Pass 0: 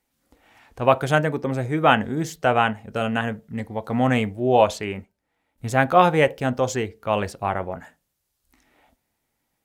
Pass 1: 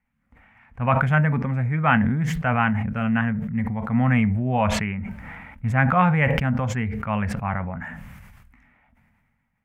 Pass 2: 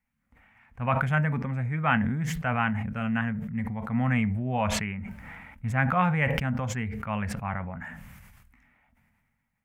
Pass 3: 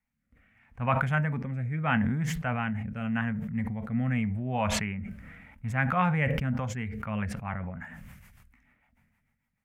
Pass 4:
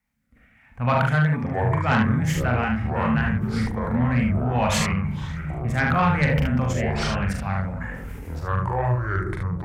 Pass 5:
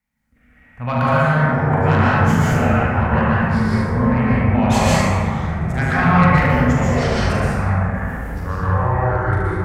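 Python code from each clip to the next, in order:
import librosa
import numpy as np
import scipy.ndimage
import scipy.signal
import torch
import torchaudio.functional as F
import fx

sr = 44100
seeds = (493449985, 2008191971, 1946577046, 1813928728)

y1 = fx.curve_eq(x, sr, hz=(230.0, 330.0, 970.0, 2200.0, 4000.0), db=(0, -22, -7, -3, -26))
y1 = fx.sustainer(y1, sr, db_per_s=29.0)
y1 = F.gain(torch.from_numpy(y1), 4.5).numpy()
y2 = fx.high_shelf(y1, sr, hz=3800.0, db=8.0)
y2 = F.gain(torch.from_numpy(y2), -6.0).numpy()
y3 = fx.rotary_switch(y2, sr, hz=0.8, then_hz=6.7, switch_at_s=6.21)
y4 = fx.echo_pitch(y3, sr, ms=307, semitones=-6, count=3, db_per_echo=-6.0)
y4 = fx.room_early_taps(y4, sr, ms=(41, 73), db=(-4.0, -4.5))
y4 = fx.cheby_harmonics(y4, sr, harmonics=(5,), levels_db=(-16,), full_scale_db=-8.5)
y5 = fx.rev_plate(y4, sr, seeds[0], rt60_s=2.4, hf_ratio=0.35, predelay_ms=105, drr_db=-7.5)
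y5 = F.gain(torch.from_numpy(y5), -2.0).numpy()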